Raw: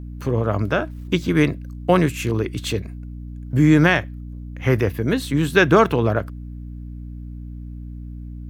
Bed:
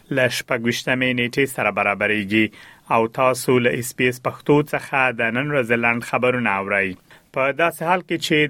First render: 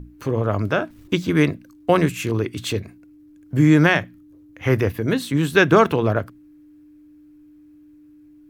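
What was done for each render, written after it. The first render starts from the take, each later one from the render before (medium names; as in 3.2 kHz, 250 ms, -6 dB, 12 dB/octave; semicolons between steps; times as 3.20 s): hum notches 60/120/180/240 Hz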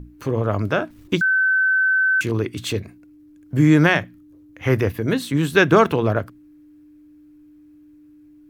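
1.21–2.21 s: bleep 1.53 kHz -14.5 dBFS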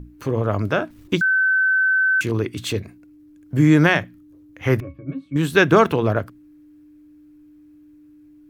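4.80–5.36 s: pitch-class resonator C#, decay 0.15 s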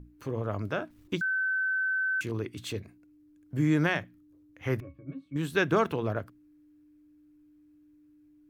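trim -11 dB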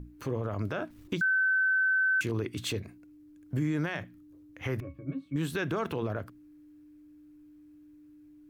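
in parallel at -2 dB: compression, threshold -34 dBFS, peak gain reduction 13.5 dB; on the sum: peak limiter -22 dBFS, peak gain reduction 10.5 dB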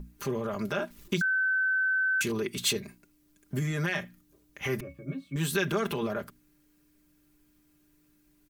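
treble shelf 3.5 kHz +10.5 dB; comb 5 ms, depth 80%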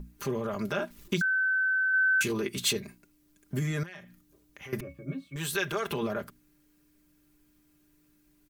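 1.92–2.60 s: doubling 15 ms -8 dB; 3.83–4.73 s: compression 3:1, threshold -46 dBFS; 5.28–5.91 s: peaking EQ 220 Hz -13.5 dB 1 oct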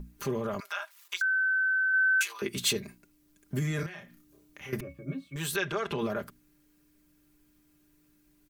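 0.60–2.42 s: high-pass 900 Hz 24 dB/octave; 3.76–4.76 s: doubling 30 ms -4 dB; 5.56–5.99 s: distance through air 76 m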